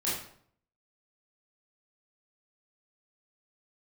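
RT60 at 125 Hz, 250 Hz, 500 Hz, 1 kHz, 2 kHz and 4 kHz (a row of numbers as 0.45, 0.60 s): 0.80, 0.70, 0.65, 0.60, 0.50, 0.45 s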